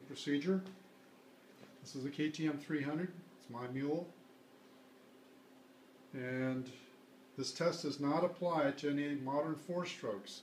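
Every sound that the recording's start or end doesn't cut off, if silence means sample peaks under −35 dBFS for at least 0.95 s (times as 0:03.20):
0:02.05–0:04.02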